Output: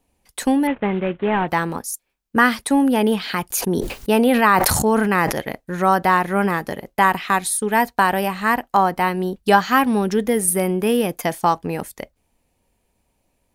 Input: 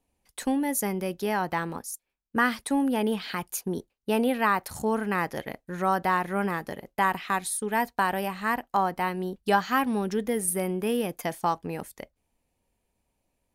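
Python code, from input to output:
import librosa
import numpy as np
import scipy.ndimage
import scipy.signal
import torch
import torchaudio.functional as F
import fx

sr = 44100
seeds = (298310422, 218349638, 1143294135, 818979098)

y = fx.cvsd(x, sr, bps=16000, at=(0.67, 1.48))
y = fx.sustainer(y, sr, db_per_s=25.0, at=(3.5, 5.31), fade=0.02)
y = y * librosa.db_to_amplitude(8.5)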